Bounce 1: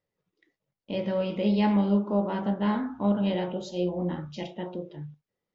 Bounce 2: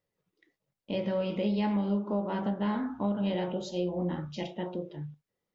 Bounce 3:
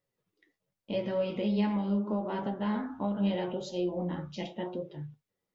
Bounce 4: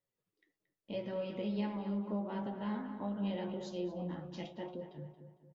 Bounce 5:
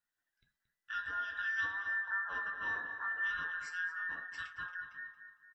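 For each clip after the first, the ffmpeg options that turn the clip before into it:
-af "acompressor=threshold=0.0447:ratio=3"
-af "flanger=delay=7:depth=4.4:regen=45:speed=0.82:shape=triangular,volume=1.41"
-filter_complex "[0:a]asplit=2[s0][s1];[s1]adelay=227,lowpass=f=2300:p=1,volume=0.355,asplit=2[s2][s3];[s3]adelay=227,lowpass=f=2300:p=1,volume=0.46,asplit=2[s4][s5];[s5]adelay=227,lowpass=f=2300:p=1,volume=0.46,asplit=2[s6][s7];[s7]adelay=227,lowpass=f=2300:p=1,volume=0.46,asplit=2[s8][s9];[s9]adelay=227,lowpass=f=2300:p=1,volume=0.46[s10];[s0][s2][s4][s6][s8][s10]amix=inputs=6:normalize=0,volume=0.422"
-af "afftfilt=real='real(if(between(b,1,1012),(2*floor((b-1)/92)+1)*92-b,b),0)':imag='imag(if(between(b,1,1012),(2*floor((b-1)/92)+1)*92-b,b),0)*if(between(b,1,1012),-1,1)':win_size=2048:overlap=0.75"

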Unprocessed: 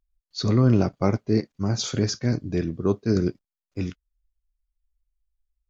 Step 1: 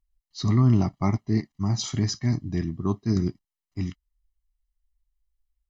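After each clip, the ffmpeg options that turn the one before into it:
-af "aecho=1:1:1:0.93,volume=0.596"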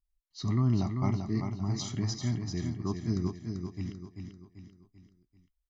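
-af "aecho=1:1:390|780|1170|1560|1950:0.501|0.221|0.097|0.0427|0.0188,volume=0.422"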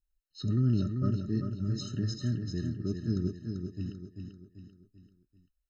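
-af "afftfilt=real='re*eq(mod(floor(b*sr/1024/620),2),0)':imag='im*eq(mod(floor(b*sr/1024/620),2),0)':win_size=1024:overlap=0.75"

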